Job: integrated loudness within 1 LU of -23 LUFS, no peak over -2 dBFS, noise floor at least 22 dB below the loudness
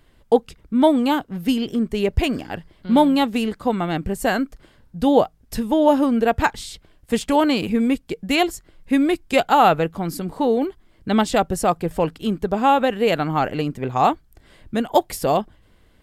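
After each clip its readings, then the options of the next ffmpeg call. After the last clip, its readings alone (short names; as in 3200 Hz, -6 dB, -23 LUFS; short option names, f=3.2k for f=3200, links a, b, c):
loudness -20.5 LUFS; peak -3.5 dBFS; loudness target -23.0 LUFS
-> -af "volume=-2.5dB"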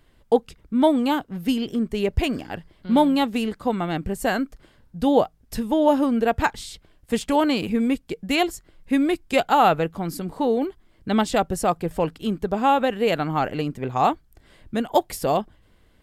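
loudness -23.0 LUFS; peak -6.0 dBFS; noise floor -58 dBFS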